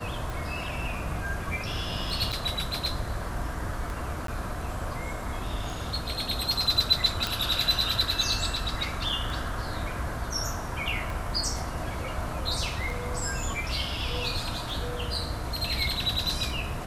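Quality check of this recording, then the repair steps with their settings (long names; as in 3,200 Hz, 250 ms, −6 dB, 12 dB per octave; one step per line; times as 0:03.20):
scratch tick 33 1/3 rpm
0:02.32–0:02.33: drop-out 7.2 ms
0:04.27–0:04.28: drop-out 13 ms
0:07.27: click −12 dBFS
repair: click removal
repair the gap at 0:02.32, 7.2 ms
repair the gap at 0:04.27, 13 ms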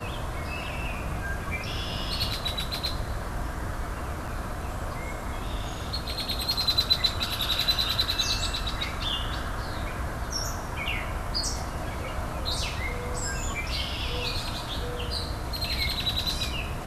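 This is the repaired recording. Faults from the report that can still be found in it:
0:07.27: click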